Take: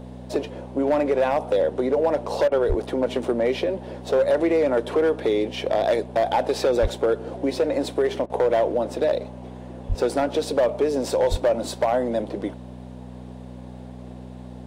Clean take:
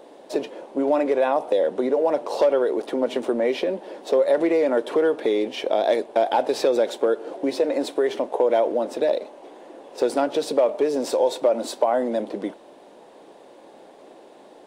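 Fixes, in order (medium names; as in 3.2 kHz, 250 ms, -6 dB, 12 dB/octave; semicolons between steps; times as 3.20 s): clip repair -14 dBFS; de-hum 62.1 Hz, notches 4; de-plosive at 2.68/6.81/9.88/11.30 s; interpolate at 2.48/8.26 s, 36 ms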